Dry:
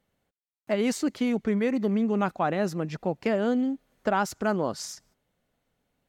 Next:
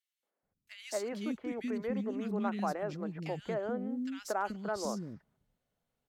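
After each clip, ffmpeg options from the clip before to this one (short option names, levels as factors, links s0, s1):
-filter_complex "[0:a]acrossover=split=300|2100[s0][s1][s2];[s1]adelay=230[s3];[s0]adelay=430[s4];[s4][s3][s2]amix=inputs=3:normalize=0,volume=0.422"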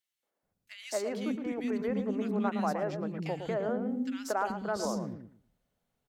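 -filter_complex "[0:a]asplit=2[s0][s1];[s1]adelay=114,lowpass=f=1000:p=1,volume=0.501,asplit=2[s2][s3];[s3]adelay=114,lowpass=f=1000:p=1,volume=0.22,asplit=2[s4][s5];[s5]adelay=114,lowpass=f=1000:p=1,volume=0.22[s6];[s0][s2][s4][s6]amix=inputs=4:normalize=0,volume=1.33"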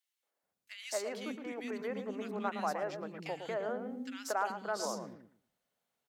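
-af "highpass=f=680:p=1"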